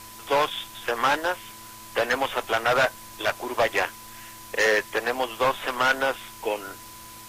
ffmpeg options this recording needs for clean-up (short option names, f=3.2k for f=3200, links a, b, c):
-af "adeclick=t=4,bandreject=f=109.8:t=h:w=4,bandreject=f=219.6:t=h:w=4,bandreject=f=329.4:t=h:w=4,bandreject=f=1k:w=30,afwtdn=0.0063"